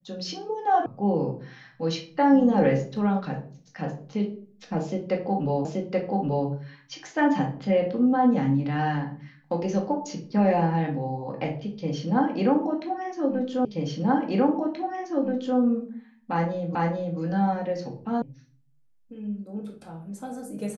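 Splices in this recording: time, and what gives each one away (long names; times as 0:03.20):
0:00.86: cut off before it has died away
0:05.65: the same again, the last 0.83 s
0:13.65: the same again, the last 1.93 s
0:16.75: the same again, the last 0.44 s
0:18.22: cut off before it has died away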